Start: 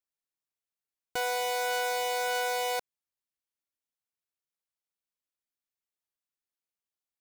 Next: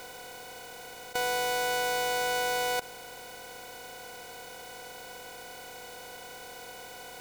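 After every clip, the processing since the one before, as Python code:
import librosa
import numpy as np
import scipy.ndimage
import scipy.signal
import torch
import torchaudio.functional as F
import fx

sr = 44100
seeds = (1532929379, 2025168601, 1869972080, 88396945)

y = fx.bin_compress(x, sr, power=0.2)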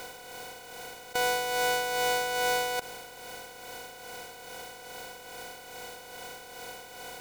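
y = x * (1.0 - 0.47 / 2.0 + 0.47 / 2.0 * np.cos(2.0 * np.pi * 2.4 * (np.arange(len(x)) / sr)))
y = F.gain(torch.from_numpy(y), 3.0).numpy()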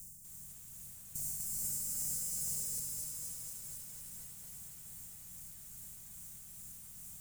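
y = scipy.signal.sosfilt(scipy.signal.ellip(3, 1.0, 40, [170.0, 7500.0], 'bandstop', fs=sr, output='sos'), x)
y = fx.echo_crushed(y, sr, ms=245, feedback_pct=80, bits=10, wet_db=-3.5)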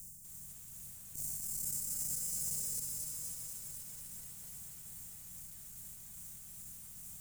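y = fx.transformer_sat(x, sr, knee_hz=970.0)
y = F.gain(torch.from_numpy(y), 1.0).numpy()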